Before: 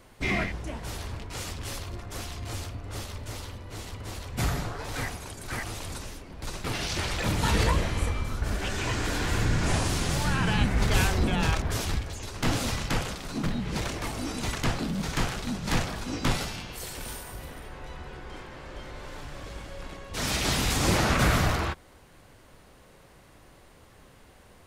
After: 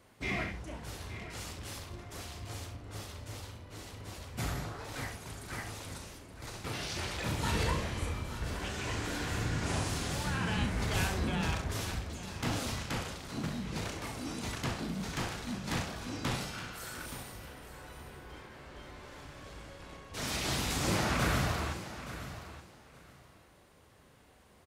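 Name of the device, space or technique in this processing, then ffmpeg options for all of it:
slapback doubling: -filter_complex "[0:a]highpass=55,asplit=3[a][b][c];[b]adelay=37,volume=-9dB[d];[c]adelay=68,volume=-10.5dB[e];[a][d][e]amix=inputs=3:normalize=0,asettb=1/sr,asplit=3[f][g][h];[f]atrim=end=16.534[i];[g]atrim=start=16.53:end=17.06,asetpts=PTS-STARTPTS,afade=t=in:d=0.004:c=qsin,afade=t=out:st=0.526:d=0.004:c=qsin,equalizer=f=1.4k:w=2.9:g=13[j];[h]atrim=start=17.056[k];[i][j]acrossfade=d=0.004:c1=hsin:c2=qsin[l];[l][k]acrossfade=d=0.004:c1=qsin:c2=hsin,aecho=1:1:872|1744:0.224|0.0425,volume=-7.5dB"

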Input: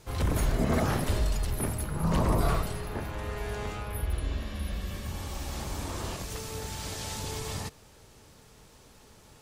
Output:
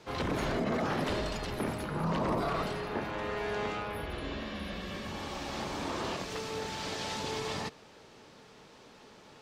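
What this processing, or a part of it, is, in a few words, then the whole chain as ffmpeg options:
DJ mixer with the lows and highs turned down: -filter_complex "[0:a]acrossover=split=160 5400:gain=0.126 1 0.112[a][b][c];[a][b][c]amix=inputs=3:normalize=0,alimiter=level_in=2.5dB:limit=-24dB:level=0:latency=1:release=31,volume=-2.5dB,volume=3.5dB"

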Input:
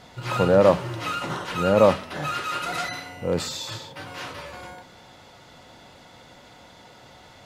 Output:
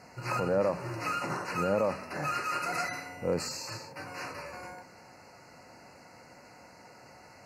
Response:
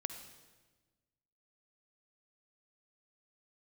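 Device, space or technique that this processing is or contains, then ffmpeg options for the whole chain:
PA system with an anti-feedback notch: -af "highpass=f=120:p=1,asuperstop=centerf=3400:order=12:qfactor=2.5,alimiter=limit=-15.5dB:level=0:latency=1:release=160,volume=-3.5dB"

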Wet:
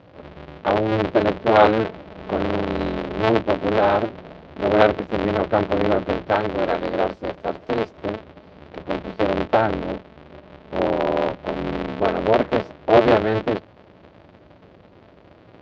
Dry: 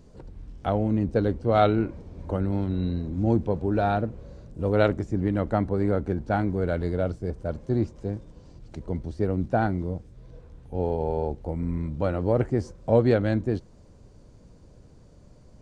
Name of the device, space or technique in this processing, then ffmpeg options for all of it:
ring modulator pedal into a guitar cabinet: -filter_complex "[0:a]asettb=1/sr,asplit=3[a][b][c];[a]atrim=end=6.324[d];[b]atrim=start=6.32:end=7.97,asetpts=PTS-STARTPTS,afade=t=in:d=0.004:c=qsin,afade=t=out:st=1.646:d=0.004:c=qsin,bass=f=250:g=-5,treble=f=4k:g=12[e];[c]atrim=start=7.966[f];[d][e]acrossfade=d=0.004:c1=hsin:c2=qsin[g];[g][f]acrossfade=d=0.004:c1=qsin:c2=hsin,aeval=exprs='val(0)*sgn(sin(2*PI*110*n/s))':c=same,highpass=98,equalizer=f=140:t=q:w=4:g=-8,equalizer=f=220:t=q:w=4:g=-6,equalizer=f=600:t=q:w=4:g=4,lowpass=f=3.7k:w=0.5412,lowpass=f=3.7k:w=1.3066,volume=5.5dB"

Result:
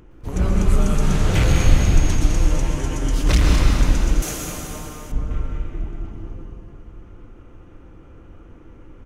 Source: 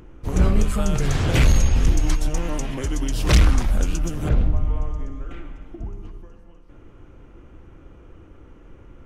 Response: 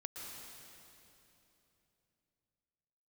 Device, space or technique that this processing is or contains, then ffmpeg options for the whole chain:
cave: -filter_complex "[0:a]aecho=1:1:208:0.398[a];[1:a]atrim=start_sample=2205[b];[a][b]afir=irnorm=-1:irlink=0,asettb=1/sr,asplit=3[c][d][e];[c]atrim=end=4.224[f];[d]atrim=start=4.22:end=5.12,asetpts=PTS-STARTPTS,afade=t=in:d=0.004:c=qsin,afade=t=out:st=0.896:d=0.004:c=qsin,aemphasis=mode=production:type=riaa[g];[e]atrim=start=5.116[h];[f][g]acrossfade=d=0.004:c1=hsin:c2=qsin[i];[i][h]acrossfade=d=0.004:c1=qsin:c2=hsin,volume=2.5dB"

